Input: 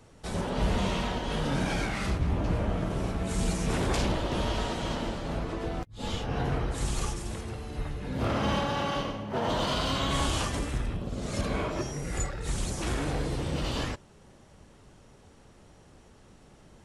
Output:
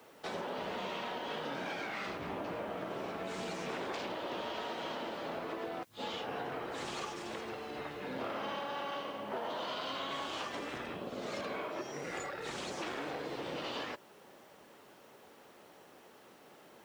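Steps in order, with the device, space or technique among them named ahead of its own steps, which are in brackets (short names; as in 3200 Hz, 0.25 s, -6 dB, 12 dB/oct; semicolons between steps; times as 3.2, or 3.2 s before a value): baby monitor (BPF 370–4000 Hz; compressor, threshold -39 dBFS, peak gain reduction 11.5 dB; white noise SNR 29 dB); gain +2.5 dB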